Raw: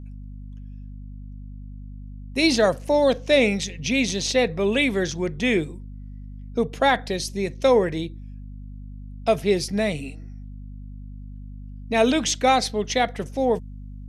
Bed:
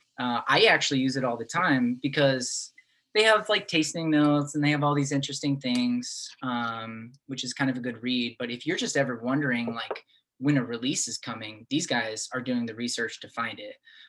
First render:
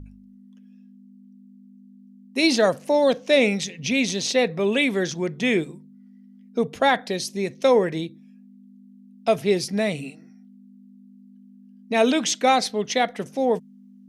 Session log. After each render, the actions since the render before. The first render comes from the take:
hum removal 50 Hz, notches 3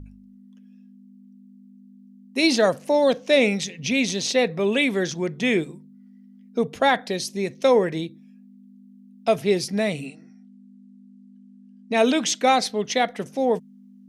0:10.06–0:11.97: linear-phase brick-wall low-pass 9,900 Hz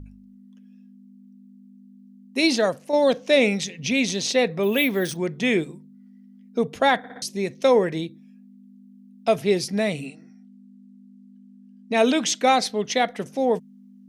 0:02.39–0:02.93: fade out, to −7 dB
0:04.63–0:05.17: bad sample-rate conversion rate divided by 3×, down filtered, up hold
0:06.98: stutter in place 0.06 s, 4 plays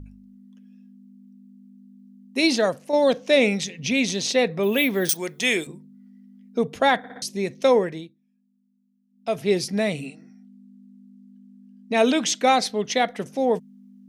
0:05.09–0:05.67: RIAA equalisation recording
0:07.72–0:09.53: duck −19.5 dB, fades 0.43 s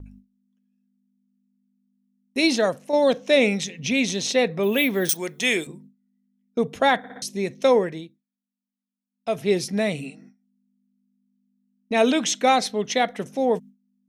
noise gate with hold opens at −39 dBFS
notch filter 4,700 Hz, Q 12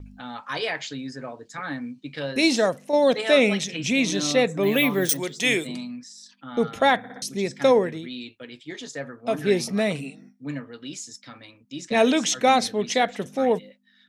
mix in bed −8.5 dB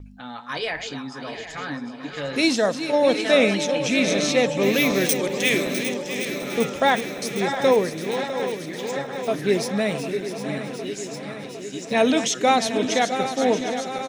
feedback delay that plays each chunk backwards 378 ms, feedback 82%, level −10 dB
repeating echo 655 ms, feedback 26%, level −11.5 dB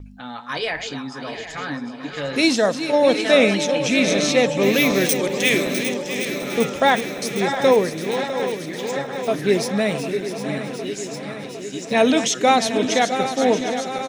level +2.5 dB
brickwall limiter −1 dBFS, peak gain reduction 2 dB

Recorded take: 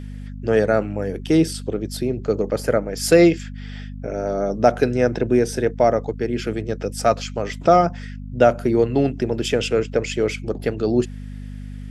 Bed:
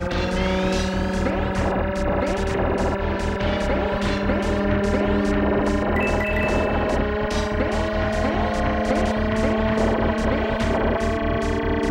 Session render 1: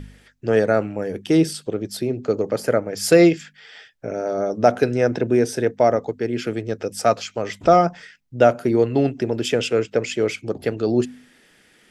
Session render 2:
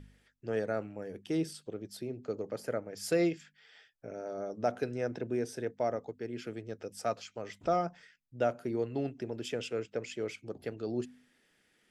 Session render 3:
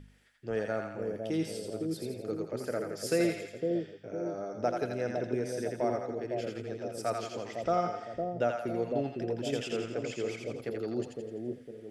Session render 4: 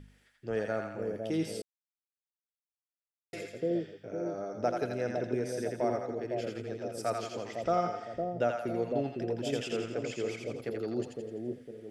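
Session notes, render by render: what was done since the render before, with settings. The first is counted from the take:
hum removal 50 Hz, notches 5
level −15.5 dB
echo with a time of its own for lows and highs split 670 Hz, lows 507 ms, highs 84 ms, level −3 dB
0:01.62–0:03.33: silence

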